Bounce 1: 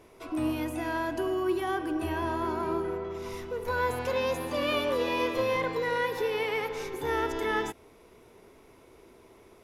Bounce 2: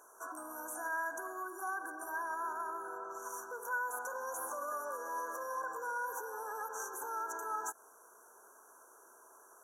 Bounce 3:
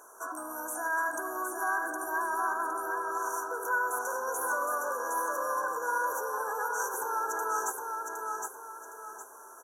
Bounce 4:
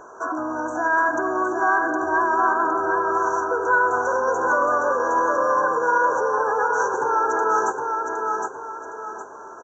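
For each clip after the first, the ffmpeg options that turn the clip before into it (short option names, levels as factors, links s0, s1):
-af "afftfilt=real='re*(1-between(b*sr/4096,1700,5700))':imag='im*(1-between(b*sr/4096,1700,5700))':win_size=4096:overlap=0.75,alimiter=level_in=1.78:limit=0.0631:level=0:latency=1:release=111,volume=0.562,highpass=1300,volume=2.37"
-af "aecho=1:1:763|1526|2289|3052:0.631|0.221|0.0773|0.0271,volume=2.11"
-af "aemphasis=mode=reproduction:type=riaa,aresample=16000,aresample=44100,acontrast=75,volume=1.68"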